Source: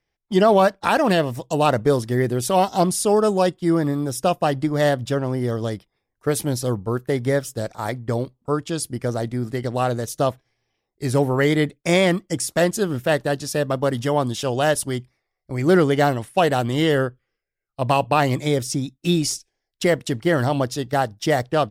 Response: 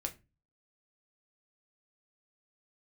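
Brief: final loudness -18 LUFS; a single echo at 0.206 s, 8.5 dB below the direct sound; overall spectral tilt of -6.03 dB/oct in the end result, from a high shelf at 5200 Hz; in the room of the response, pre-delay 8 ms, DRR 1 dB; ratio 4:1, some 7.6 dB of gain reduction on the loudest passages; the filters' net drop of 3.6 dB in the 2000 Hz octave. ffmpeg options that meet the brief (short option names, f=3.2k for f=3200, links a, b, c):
-filter_complex "[0:a]equalizer=f=2k:t=o:g=-4,highshelf=f=5.2k:g=-3.5,acompressor=threshold=-21dB:ratio=4,aecho=1:1:206:0.376,asplit=2[a][b];[1:a]atrim=start_sample=2205,adelay=8[c];[b][c]afir=irnorm=-1:irlink=0,volume=-1dB[d];[a][d]amix=inputs=2:normalize=0,volume=4.5dB"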